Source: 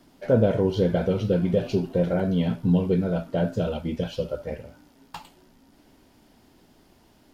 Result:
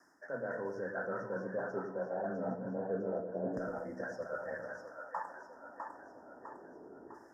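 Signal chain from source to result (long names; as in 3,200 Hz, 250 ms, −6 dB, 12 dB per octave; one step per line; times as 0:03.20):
auto-filter band-pass saw down 0.28 Hz 370–2,500 Hz
reversed playback
downward compressor 6 to 1, threshold −47 dBFS, peak gain reduction 22.5 dB
reversed playback
frequency shifter +14 Hz
Chebyshev band-stop filter 1,800–5,200 Hz, order 5
echo with a time of its own for lows and highs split 590 Hz, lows 103 ms, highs 653 ms, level −5 dB
on a send at −18.5 dB: convolution reverb RT60 0.70 s, pre-delay 97 ms
on the sum: level +11 dB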